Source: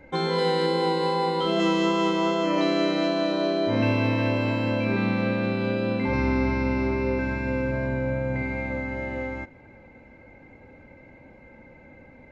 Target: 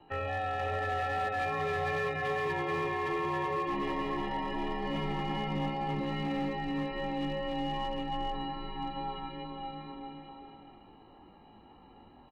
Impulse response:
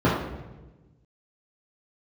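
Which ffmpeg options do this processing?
-filter_complex "[0:a]acrossover=split=110|860[a][b][c];[a]acompressor=threshold=-46dB:ratio=4[d];[b]alimiter=limit=-22dB:level=0:latency=1:release=34[e];[d][e][c]amix=inputs=3:normalize=0,asetrate=88200,aresample=44100,atempo=0.5,highpass=f=220:t=q:w=0.5412,highpass=f=220:t=q:w=1.307,lowpass=f=3.1k:t=q:w=0.5176,lowpass=f=3.1k:t=q:w=0.7071,lowpass=f=3.1k:t=q:w=1.932,afreqshift=-240,aecho=1:1:480|840|1110|1312|1464:0.631|0.398|0.251|0.158|0.1,asoftclip=type=hard:threshold=-21dB,asuperstop=centerf=1500:order=8:qfactor=5.9,volume=-6.5dB" -ar 48000 -c:a libvorbis -b:a 96k

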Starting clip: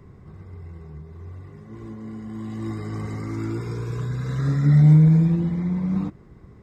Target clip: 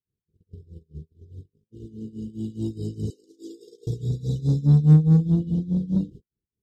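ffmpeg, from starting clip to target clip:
-filter_complex "[0:a]asettb=1/sr,asplit=3[a][b][c];[a]atrim=end=3.104[d];[b]atrim=start=3.1:end=3.87,asetpts=PTS-STARTPTS,afade=t=in:d=0.004:c=qsin,afade=t=out:st=0.766:d=0.004:c=qsin,highpass=f=400:w=0.5412,highpass=f=400:w=1.3066[e];[c]atrim=start=3.866[f];[d][e]acrossfade=d=0.004:c1=hsin:c2=qsin[g];[g][f]acrossfade=d=0.004:c1=qsin:c2=hsin,agate=range=-42dB:threshold=-37dB:ratio=16:detection=peak,afftfilt=real='re*(1-between(b*sr/4096,520,2800))':imag='im*(1-between(b*sr/4096,520,2800))':win_size=4096:overlap=0.75,tremolo=f=4.8:d=0.89,asplit=2[h][i];[i]asoftclip=type=tanh:threshold=-24.5dB,volume=-3.5dB[j];[h][j]amix=inputs=2:normalize=0"

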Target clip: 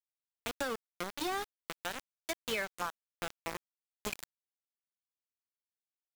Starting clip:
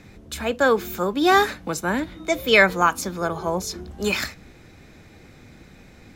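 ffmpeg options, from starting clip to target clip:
-af "aeval=exprs='val(0)*gte(abs(val(0)),0.141)':c=same,acompressor=threshold=-26dB:ratio=6,volume=-7dB"

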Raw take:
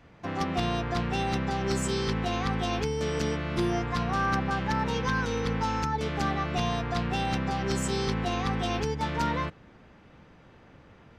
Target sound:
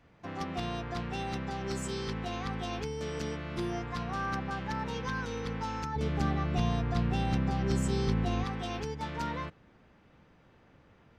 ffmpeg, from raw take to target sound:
-filter_complex "[0:a]asettb=1/sr,asplit=3[a][b][c];[a]atrim=end=5.964[d];[b]atrim=start=5.96:end=8.44,asetpts=PTS-STARTPTS,afade=t=in:d=0.004:c=qsin,afade=t=out:st=2.476:d=0.004:c=qsin,lowshelf=f=320:g=10.5[e];[c]atrim=start=8.436[f];[d][e]acrossfade=d=0.004:c1=hsin:c2=qsin[g];[g][f]acrossfade=d=0.004:c1=qsin:c2=hsin,volume=-7dB"

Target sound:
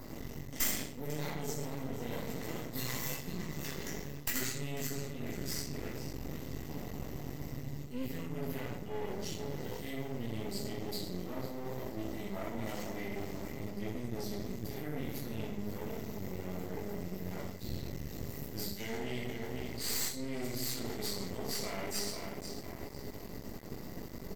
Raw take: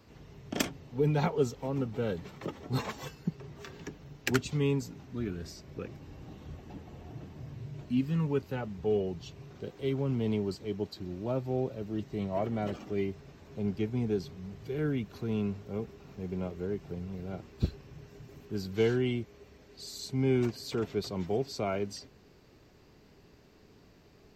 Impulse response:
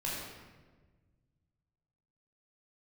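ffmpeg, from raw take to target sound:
-filter_complex "[0:a]acrossover=split=1200[a][b];[a]acompressor=mode=upward:threshold=-33dB:ratio=2.5[c];[b]aemphasis=mode=production:type=75fm[d];[c][d]amix=inputs=2:normalize=0,asplit=2[e][f];[f]adelay=496,lowpass=f=3.9k:p=1,volume=-11dB,asplit=2[g][h];[h]adelay=496,lowpass=f=3.9k:p=1,volume=0.46,asplit=2[i][j];[j]adelay=496,lowpass=f=3.9k:p=1,volume=0.46,asplit=2[k][l];[l]adelay=496,lowpass=f=3.9k:p=1,volume=0.46,asplit=2[m][n];[n]adelay=496,lowpass=f=3.9k:p=1,volume=0.46[o];[e][g][i][k][m][o]amix=inputs=6:normalize=0[p];[1:a]atrim=start_sample=2205,asetrate=79380,aresample=44100[q];[p][q]afir=irnorm=-1:irlink=0,areverse,acompressor=threshold=-35dB:ratio=6,areverse,crystalizer=i=2:c=0,aeval=exprs='max(val(0),0)':c=same,equalizer=f=2k:w=7.4:g=12,volume=2.5dB"

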